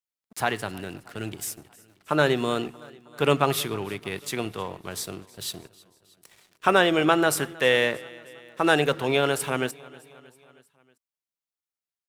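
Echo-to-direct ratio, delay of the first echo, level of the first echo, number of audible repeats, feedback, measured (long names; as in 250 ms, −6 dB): −20.0 dB, 316 ms, −22.0 dB, 3, 59%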